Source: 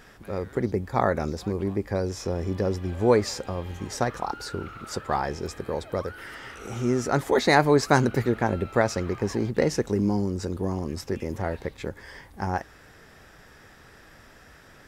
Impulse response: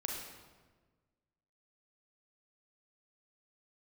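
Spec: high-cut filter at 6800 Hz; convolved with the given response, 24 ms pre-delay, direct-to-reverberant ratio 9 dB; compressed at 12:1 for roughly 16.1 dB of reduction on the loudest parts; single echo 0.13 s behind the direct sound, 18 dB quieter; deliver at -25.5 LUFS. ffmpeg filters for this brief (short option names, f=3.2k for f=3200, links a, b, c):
-filter_complex "[0:a]lowpass=6.8k,acompressor=threshold=-30dB:ratio=12,aecho=1:1:130:0.126,asplit=2[a][b];[1:a]atrim=start_sample=2205,adelay=24[c];[b][c]afir=irnorm=-1:irlink=0,volume=-10.5dB[d];[a][d]amix=inputs=2:normalize=0,volume=10dB"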